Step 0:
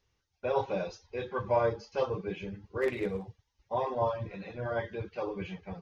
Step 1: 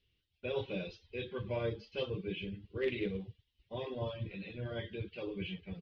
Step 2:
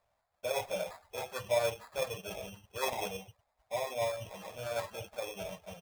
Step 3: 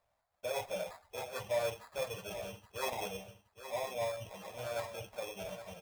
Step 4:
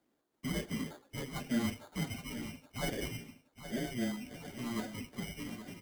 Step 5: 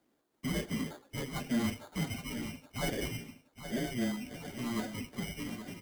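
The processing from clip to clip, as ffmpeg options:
ffmpeg -i in.wav -af "firequalizer=gain_entry='entry(330,0);entry(820,-17);entry(3000,9);entry(6800,-20)':delay=0.05:min_phase=1,volume=-1.5dB" out.wav
ffmpeg -i in.wav -af "acrusher=samples=15:mix=1:aa=0.000001,lowshelf=frequency=470:width_type=q:width=3:gain=-11.5,volume=5dB" out.wav
ffmpeg -i in.wav -af "asoftclip=type=tanh:threshold=-23.5dB,aecho=1:1:820|1640|2460:0.266|0.0665|0.0166,volume=-2dB" out.wav
ffmpeg -i in.wav -af "afreqshift=-360,volume=1dB" out.wav
ffmpeg -i in.wav -af "asoftclip=type=tanh:threshold=-25.5dB,volume=3dB" out.wav

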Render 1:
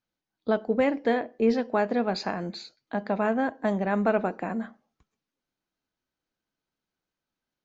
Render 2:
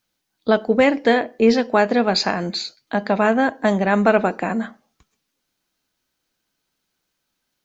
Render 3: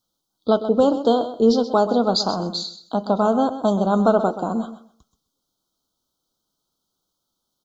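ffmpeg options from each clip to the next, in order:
ffmpeg -i in.wav -af "highshelf=frequency=2200:gain=9,volume=7.5dB" out.wav
ffmpeg -i in.wav -af "asuperstop=centerf=2100:order=12:qfactor=1.2,aecho=1:1:128|256|384:0.251|0.0502|0.01,volume=-1dB" out.wav

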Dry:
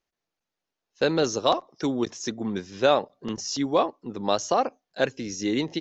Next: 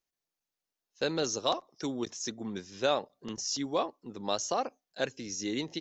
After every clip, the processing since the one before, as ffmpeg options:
ffmpeg -i in.wav -af "highshelf=frequency=4900:gain=11.5,volume=-8.5dB" out.wav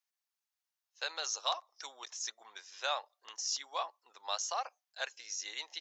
ffmpeg -i in.wav -af "highpass=frequency=790:width=0.5412,highpass=frequency=790:width=1.3066,volume=-1.5dB" out.wav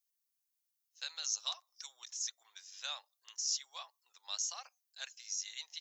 ffmpeg -i in.wav -af "aderivative,volume=3dB" out.wav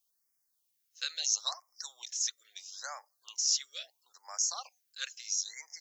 ffmpeg -i in.wav -af "afftfilt=real='re*(1-between(b*sr/1024,780*pow(3400/780,0.5+0.5*sin(2*PI*0.75*pts/sr))/1.41,780*pow(3400/780,0.5+0.5*sin(2*PI*0.75*pts/sr))*1.41))':imag='im*(1-between(b*sr/1024,780*pow(3400/780,0.5+0.5*sin(2*PI*0.75*pts/sr))/1.41,780*pow(3400/780,0.5+0.5*sin(2*PI*0.75*pts/sr))*1.41))':win_size=1024:overlap=0.75,volume=6.5dB" out.wav

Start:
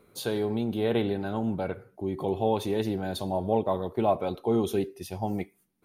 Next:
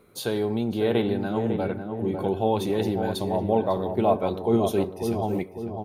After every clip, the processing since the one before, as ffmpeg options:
ffmpeg -i in.wav -filter_complex "[0:a]asplit=2[link_01][link_02];[link_02]adelay=550,lowpass=frequency=1200:poles=1,volume=-5.5dB,asplit=2[link_03][link_04];[link_04]adelay=550,lowpass=frequency=1200:poles=1,volume=0.5,asplit=2[link_05][link_06];[link_06]adelay=550,lowpass=frequency=1200:poles=1,volume=0.5,asplit=2[link_07][link_08];[link_08]adelay=550,lowpass=frequency=1200:poles=1,volume=0.5,asplit=2[link_09][link_10];[link_10]adelay=550,lowpass=frequency=1200:poles=1,volume=0.5,asplit=2[link_11][link_12];[link_12]adelay=550,lowpass=frequency=1200:poles=1,volume=0.5[link_13];[link_01][link_03][link_05][link_07][link_09][link_11][link_13]amix=inputs=7:normalize=0,volume=2.5dB" out.wav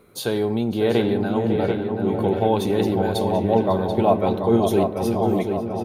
ffmpeg -i in.wav -filter_complex "[0:a]asplit=2[link_01][link_02];[link_02]adelay=735,lowpass=frequency=3100:poles=1,volume=-6dB,asplit=2[link_03][link_04];[link_04]adelay=735,lowpass=frequency=3100:poles=1,volume=0.54,asplit=2[link_05][link_06];[link_06]adelay=735,lowpass=frequency=3100:poles=1,volume=0.54,asplit=2[link_07][link_08];[link_08]adelay=735,lowpass=frequency=3100:poles=1,volume=0.54,asplit=2[link_09][link_10];[link_10]adelay=735,lowpass=frequency=3100:poles=1,volume=0.54,asplit=2[link_11][link_12];[link_12]adelay=735,lowpass=frequency=3100:poles=1,volume=0.54,asplit=2[link_13][link_14];[link_14]adelay=735,lowpass=frequency=3100:poles=1,volume=0.54[link_15];[link_01][link_03][link_05][link_07][link_09][link_11][link_13][link_15]amix=inputs=8:normalize=0,volume=3.5dB" out.wav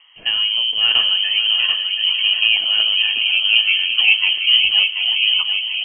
ffmpeg -i in.wav -af "lowpass=frequency=2800:width_type=q:width=0.5098,lowpass=frequency=2800:width_type=q:width=0.6013,lowpass=frequency=2800:width_type=q:width=0.9,lowpass=frequency=2800:width_type=q:width=2.563,afreqshift=-3300,volume=3.5dB" out.wav

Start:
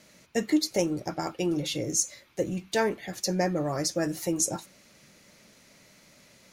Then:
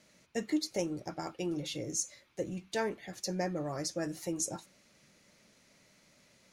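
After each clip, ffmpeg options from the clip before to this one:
ffmpeg -i in.wav -af "equalizer=frequency=14000:width=2.1:gain=-9.5,volume=-7.5dB" out.wav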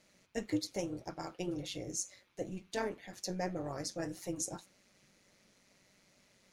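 ffmpeg -i in.wav -af "flanger=delay=1.9:depth=5.2:regen=-81:speed=1.9:shape=triangular,tremolo=f=190:d=0.621,volume=4dB" out.wav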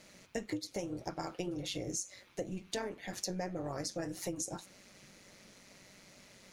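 ffmpeg -i in.wav -af "acompressor=threshold=-45dB:ratio=6,volume=9.5dB" out.wav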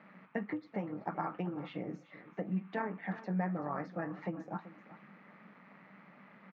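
ffmpeg -i in.wav -af "highpass=frequency=160:width=0.5412,highpass=frequency=160:width=1.3066,equalizer=frequency=190:width_type=q:width=4:gain=9,equalizer=frequency=360:width_type=q:width=4:gain=-5,equalizer=frequency=540:width_type=q:width=4:gain=-4,equalizer=frequency=850:width_type=q:width=4:gain=5,equalizer=frequency=1200:width_type=q:width=4:gain=9,equalizer=frequency=1800:width_type=q:width=4:gain=3,lowpass=frequency=2200:width=0.5412,lowpass=frequency=2200:width=1.3066,aecho=1:1:383:0.158,volume=1dB" out.wav

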